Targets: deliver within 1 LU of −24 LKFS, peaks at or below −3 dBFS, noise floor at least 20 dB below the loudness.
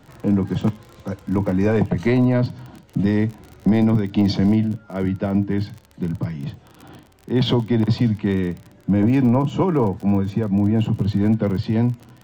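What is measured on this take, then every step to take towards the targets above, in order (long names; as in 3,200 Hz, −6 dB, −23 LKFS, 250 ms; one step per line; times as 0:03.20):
crackle rate 38 per second; integrated loudness −20.5 LKFS; sample peak −9.5 dBFS; target loudness −24.0 LKFS
→ click removal
level −3.5 dB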